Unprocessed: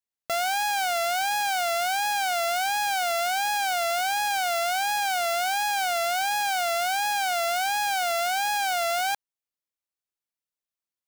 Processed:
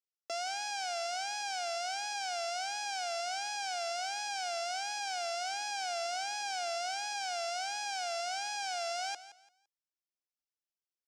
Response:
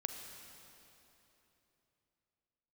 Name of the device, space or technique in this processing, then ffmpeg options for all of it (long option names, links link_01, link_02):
phone speaker on a table: -filter_complex "[0:a]asettb=1/sr,asplit=3[link_01][link_02][link_03];[link_01]atrim=end=5.514[link_04];[link_02]atrim=start=5.51:end=6.91,asetpts=PTS-STARTPTS,afade=type=in:duration=0.004:curve=qsin,afade=type=out:start_time=1.396:duration=0.004:curve=qsin,lowshelf=frequency=160:gain=10.5[link_05];[link_03]atrim=start=6.906[link_06];[link_04][link_05]acrossfade=duration=0.004:curve1=hsin:curve2=qsin[link_07];[link_07][link_06]acrossfade=duration=0.004:curve1=qsin:curve2=hsin,highpass=frequency=330:width=0.5412,highpass=frequency=330:width=1.3066,equalizer=frequency=330:width_type=q:width=4:gain=5,equalizer=frequency=920:width_type=q:width=4:gain=-9,equalizer=frequency=1300:width_type=q:width=4:gain=-5,equalizer=frequency=1900:width_type=q:width=4:gain=-8,equalizer=frequency=3700:width_type=q:width=4:gain=-5,equalizer=frequency=5300:width_type=q:width=4:gain=8,lowpass=frequency=7800:width=0.5412,lowpass=frequency=7800:width=1.3066,aecho=1:1:170|340|510:0.178|0.048|0.013,volume=-8.5dB"